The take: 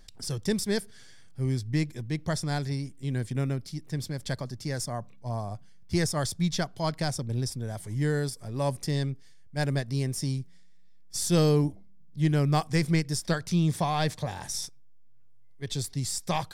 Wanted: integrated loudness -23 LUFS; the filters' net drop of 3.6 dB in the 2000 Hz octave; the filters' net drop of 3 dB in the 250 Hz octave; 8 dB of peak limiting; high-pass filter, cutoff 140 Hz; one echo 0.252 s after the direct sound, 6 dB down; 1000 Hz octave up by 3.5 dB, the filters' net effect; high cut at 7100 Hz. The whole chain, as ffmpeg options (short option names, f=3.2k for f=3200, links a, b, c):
-af "highpass=140,lowpass=7.1k,equalizer=f=250:t=o:g=-3.5,equalizer=f=1k:t=o:g=6.5,equalizer=f=2k:t=o:g=-7,alimiter=limit=-19dB:level=0:latency=1,aecho=1:1:252:0.501,volume=9.5dB"